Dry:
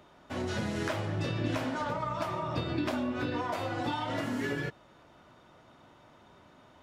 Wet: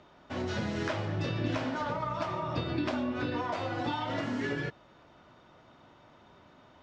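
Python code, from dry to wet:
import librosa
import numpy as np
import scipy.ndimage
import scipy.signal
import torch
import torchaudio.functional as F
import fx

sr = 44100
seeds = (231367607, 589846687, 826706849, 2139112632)

y = scipy.signal.sosfilt(scipy.signal.butter(4, 6300.0, 'lowpass', fs=sr, output='sos'), x)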